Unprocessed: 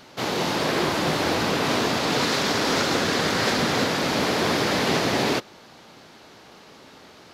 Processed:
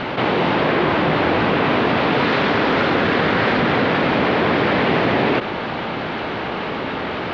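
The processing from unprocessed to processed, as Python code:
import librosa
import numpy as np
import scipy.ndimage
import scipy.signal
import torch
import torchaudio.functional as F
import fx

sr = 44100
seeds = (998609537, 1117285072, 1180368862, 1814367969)

y = scipy.signal.sosfilt(scipy.signal.butter(4, 3000.0, 'lowpass', fs=sr, output='sos'), x)
y = fx.env_flatten(y, sr, amount_pct=70)
y = y * 10.0 ** (4.5 / 20.0)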